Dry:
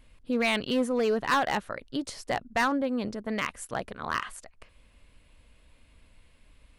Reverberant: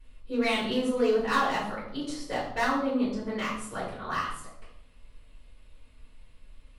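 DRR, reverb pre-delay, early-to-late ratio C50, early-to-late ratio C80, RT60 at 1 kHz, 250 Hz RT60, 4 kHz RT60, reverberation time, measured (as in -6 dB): -9.0 dB, 3 ms, 4.0 dB, 7.0 dB, 0.70 s, 1.1 s, 0.55 s, 0.75 s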